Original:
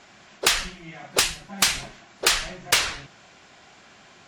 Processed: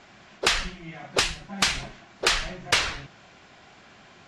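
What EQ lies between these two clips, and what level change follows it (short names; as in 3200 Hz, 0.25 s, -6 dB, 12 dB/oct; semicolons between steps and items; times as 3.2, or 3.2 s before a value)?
air absorption 71 m; low shelf 180 Hz +4 dB; 0.0 dB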